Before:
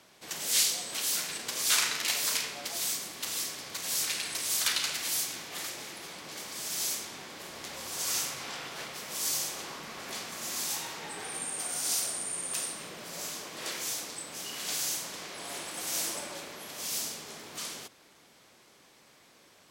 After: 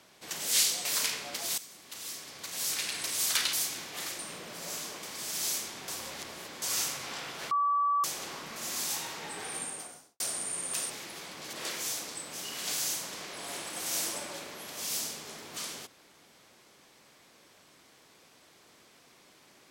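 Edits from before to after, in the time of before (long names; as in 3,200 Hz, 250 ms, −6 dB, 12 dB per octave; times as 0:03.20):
0:00.85–0:02.16: remove
0:02.89–0:04.31: fade in, from −15.5 dB
0:04.84–0:05.11: remove
0:05.77–0:06.40: swap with 0:12.70–0:13.54
0:07.25–0:07.99: reverse
0:08.88–0:09.41: beep over 1,150 Hz −24 dBFS
0:09.93–0:10.36: remove
0:11.37–0:12.00: fade out and dull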